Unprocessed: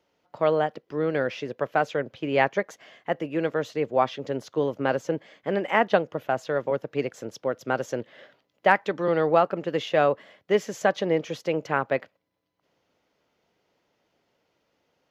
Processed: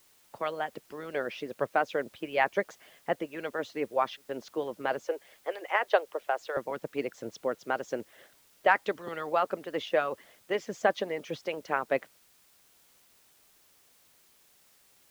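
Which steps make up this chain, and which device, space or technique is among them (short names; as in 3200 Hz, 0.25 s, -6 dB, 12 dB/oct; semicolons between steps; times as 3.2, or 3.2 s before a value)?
5.04–6.57 steep high-pass 380 Hz 36 dB/oct; harmonic-percussive split harmonic -16 dB; worn cassette (LPF 6200 Hz; wow and flutter 28 cents; level dips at 4.17, 0.118 s -28 dB; white noise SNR 30 dB); gain -2.5 dB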